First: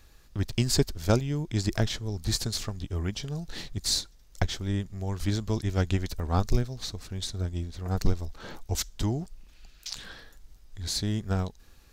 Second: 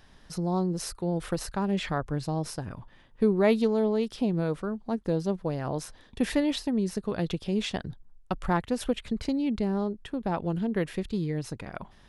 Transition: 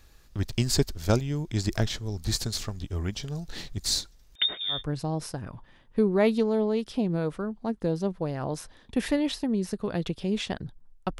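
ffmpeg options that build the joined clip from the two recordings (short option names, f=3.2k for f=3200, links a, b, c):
-filter_complex "[0:a]asettb=1/sr,asplit=3[a][b][c];[a]atrim=end=4.354[d];[b]atrim=start=4.35:end=4.84,asetpts=PTS-STARTPTS,afade=t=in:d=0.004:c=qsin,afade=t=out:st=0.486:d=0.004:c=qsin,lowpass=f=3.1k:t=q:w=0.5098,lowpass=f=3.1k:t=q:w=0.6013,lowpass=f=3.1k:t=q:w=0.9,lowpass=f=3.1k:t=q:w=2.563,afreqshift=-3700[e];[c]atrim=start=4.836[f];[d][e]acrossfade=d=0.004:c1=hsin:c2=qsin[g];[g][f]acrossfade=d=0.004:c1=qsin:c2=hsin,apad=whole_dur=11.19,atrim=end=11.19,atrim=end=4.84,asetpts=PTS-STARTPTS[h];[1:a]atrim=start=1.92:end=8.43,asetpts=PTS-STARTPTS[i];[h][i]acrossfade=d=0.16:c1=tri:c2=tri"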